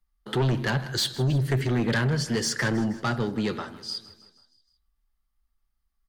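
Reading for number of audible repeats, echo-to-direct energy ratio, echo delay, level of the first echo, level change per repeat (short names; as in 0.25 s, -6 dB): 4, -16.0 dB, 0.158 s, -17.5 dB, -5.0 dB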